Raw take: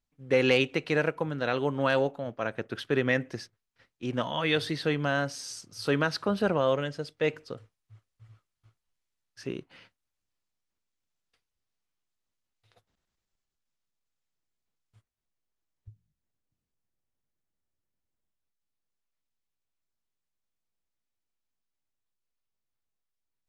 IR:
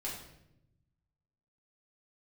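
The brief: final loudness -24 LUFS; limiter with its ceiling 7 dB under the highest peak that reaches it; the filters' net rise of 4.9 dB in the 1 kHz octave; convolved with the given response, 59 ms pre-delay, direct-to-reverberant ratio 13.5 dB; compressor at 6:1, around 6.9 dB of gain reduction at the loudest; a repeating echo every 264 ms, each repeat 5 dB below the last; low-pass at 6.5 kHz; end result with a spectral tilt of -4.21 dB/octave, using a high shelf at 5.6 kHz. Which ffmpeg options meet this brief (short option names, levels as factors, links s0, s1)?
-filter_complex "[0:a]lowpass=6500,equalizer=f=1000:t=o:g=6.5,highshelf=f=5600:g=-4.5,acompressor=threshold=0.0562:ratio=6,alimiter=limit=0.0944:level=0:latency=1,aecho=1:1:264|528|792|1056|1320|1584|1848:0.562|0.315|0.176|0.0988|0.0553|0.031|0.0173,asplit=2[s0][s1];[1:a]atrim=start_sample=2205,adelay=59[s2];[s1][s2]afir=irnorm=-1:irlink=0,volume=0.188[s3];[s0][s3]amix=inputs=2:normalize=0,volume=2.82"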